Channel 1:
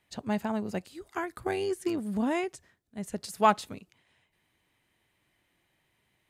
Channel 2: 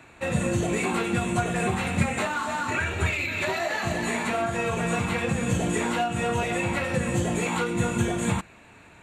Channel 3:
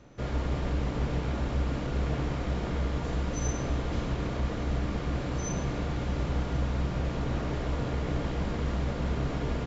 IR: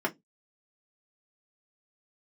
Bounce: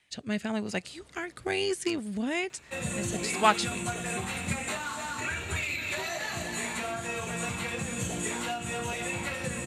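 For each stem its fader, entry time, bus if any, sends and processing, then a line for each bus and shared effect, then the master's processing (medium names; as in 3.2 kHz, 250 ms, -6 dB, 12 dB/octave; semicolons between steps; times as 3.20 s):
0.0 dB, 0.00 s, no send, low-pass 9.6 kHz 24 dB/octave; peaking EQ 2.3 kHz +6 dB 1.5 oct; rotary cabinet horn 1 Hz
-9.5 dB, 2.50 s, no send, none
-19.0 dB, 0.65 s, no send, high-pass 79 Hz 24 dB/octave; auto duck -13 dB, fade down 2.00 s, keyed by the first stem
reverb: none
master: treble shelf 2.6 kHz +11.5 dB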